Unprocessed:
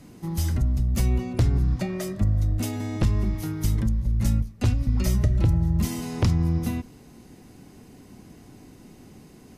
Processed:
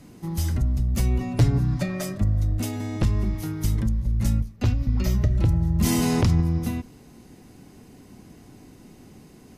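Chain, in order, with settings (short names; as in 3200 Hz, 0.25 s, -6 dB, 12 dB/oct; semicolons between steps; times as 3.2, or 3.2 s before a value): 1.2–2.18 comb 7 ms, depth 99%; 4.56–5.31 bell 9200 Hz -13 dB 0.51 oct; 5.81–6.41 fast leveller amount 70%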